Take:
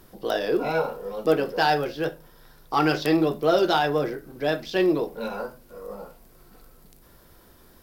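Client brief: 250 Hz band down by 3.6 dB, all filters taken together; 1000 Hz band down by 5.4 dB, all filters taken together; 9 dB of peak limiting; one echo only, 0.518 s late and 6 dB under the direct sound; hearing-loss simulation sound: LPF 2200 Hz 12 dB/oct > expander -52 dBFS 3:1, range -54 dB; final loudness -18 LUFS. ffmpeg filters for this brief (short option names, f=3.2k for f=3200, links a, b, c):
-af "equalizer=f=250:t=o:g=-5,equalizer=f=1k:t=o:g=-7.5,alimiter=limit=-18dB:level=0:latency=1,lowpass=2.2k,aecho=1:1:518:0.501,agate=range=-54dB:threshold=-52dB:ratio=3,volume=12dB"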